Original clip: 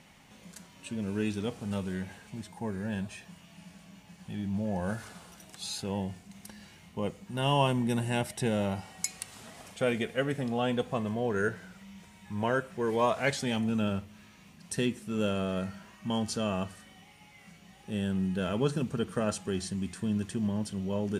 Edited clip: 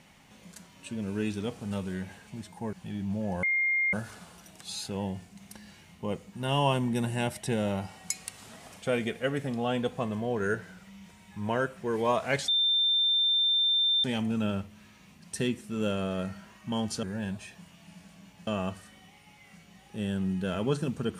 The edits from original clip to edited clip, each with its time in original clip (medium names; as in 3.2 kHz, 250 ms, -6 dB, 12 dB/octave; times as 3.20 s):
2.73–4.17 s: move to 16.41 s
4.87 s: add tone 2.12 kHz -23.5 dBFS 0.50 s
13.42 s: add tone 3.58 kHz -22 dBFS 1.56 s